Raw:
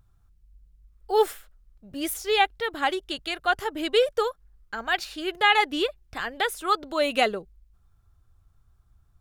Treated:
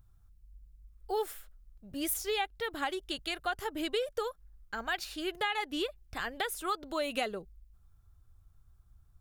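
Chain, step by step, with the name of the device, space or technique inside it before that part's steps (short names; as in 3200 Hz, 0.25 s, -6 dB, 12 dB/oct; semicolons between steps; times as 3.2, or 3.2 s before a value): ASMR close-microphone chain (low shelf 140 Hz +5.5 dB; compressor 4:1, threshold -25 dBFS, peak gain reduction 10.5 dB; high shelf 8000 Hz +7.5 dB); gain -5 dB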